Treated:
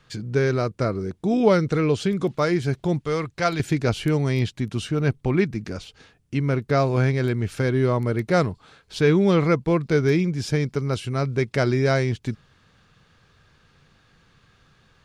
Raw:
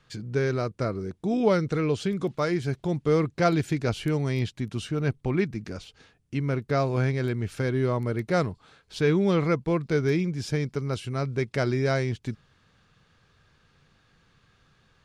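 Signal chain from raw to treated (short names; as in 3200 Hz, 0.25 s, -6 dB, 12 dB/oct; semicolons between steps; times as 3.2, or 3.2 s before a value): 3.01–3.6 bell 250 Hz -10.5 dB 2.5 oct; gain +4.5 dB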